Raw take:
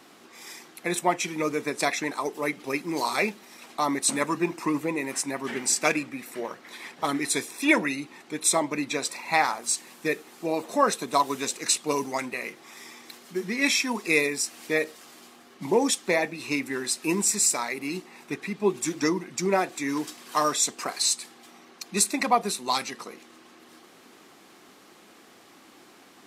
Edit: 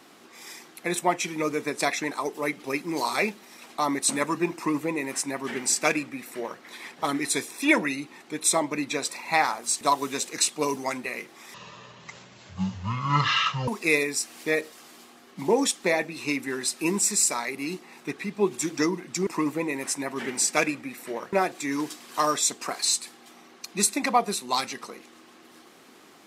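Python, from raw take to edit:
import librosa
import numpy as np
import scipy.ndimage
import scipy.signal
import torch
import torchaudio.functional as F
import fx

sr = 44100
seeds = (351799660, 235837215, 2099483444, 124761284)

y = fx.edit(x, sr, fx.duplicate(start_s=4.55, length_s=2.06, to_s=19.5),
    fx.cut(start_s=9.81, length_s=1.28),
    fx.speed_span(start_s=12.82, length_s=1.09, speed=0.51), tone=tone)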